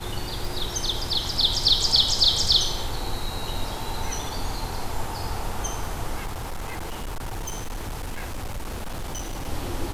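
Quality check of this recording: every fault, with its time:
tick 33 1/3 rpm
6.25–9.49 s: clipped -27.5 dBFS

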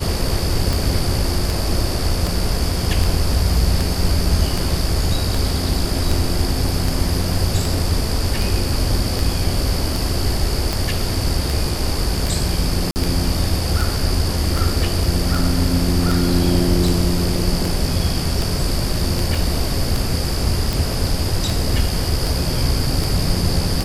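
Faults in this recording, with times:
tick 78 rpm
12.91–12.96 s: dropout 49 ms
19.35 s: dropout 2.9 ms

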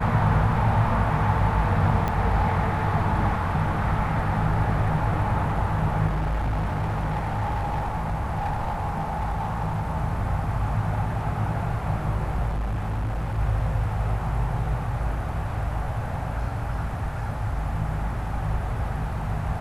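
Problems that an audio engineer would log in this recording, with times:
2.08 s: pop -14 dBFS
6.06–9.83 s: clipped -22 dBFS
12.48–13.39 s: clipped -23.5 dBFS

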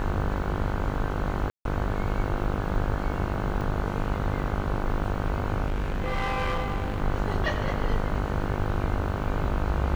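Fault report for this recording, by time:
buzz 50 Hz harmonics 31 -31 dBFS
1.50–1.65 s: dropout 152 ms
3.61 s: dropout 2.4 ms
5.66–7.00 s: clipped -23.5 dBFS

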